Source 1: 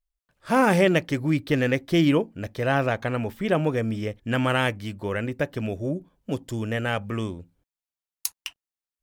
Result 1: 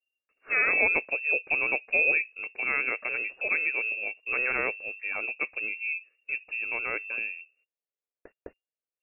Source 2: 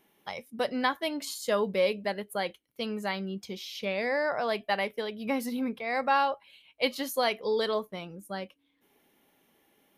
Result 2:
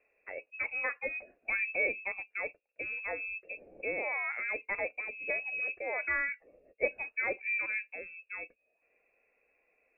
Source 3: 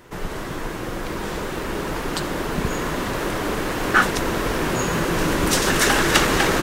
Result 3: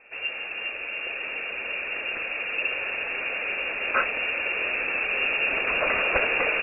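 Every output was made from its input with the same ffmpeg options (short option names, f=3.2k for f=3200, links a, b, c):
-af "lowpass=f=2.4k:t=q:w=0.5098,lowpass=f=2.4k:t=q:w=0.6013,lowpass=f=2.4k:t=q:w=0.9,lowpass=f=2.4k:t=q:w=2.563,afreqshift=-2800,equalizer=f=125:t=o:w=1:g=-10,equalizer=f=500:t=o:w=1:g=9,equalizer=f=1k:t=o:w=1:g=-12,equalizer=f=2k:t=o:w=1:g=-5"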